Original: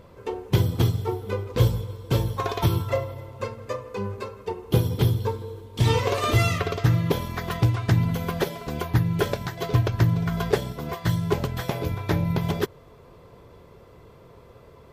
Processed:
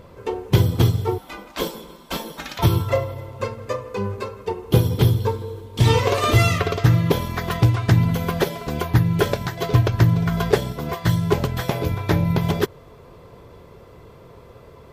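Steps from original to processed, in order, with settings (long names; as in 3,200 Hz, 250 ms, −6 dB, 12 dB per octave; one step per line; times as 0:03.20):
0:01.18–0:02.59: gate on every frequency bin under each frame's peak −15 dB weak
level +4.5 dB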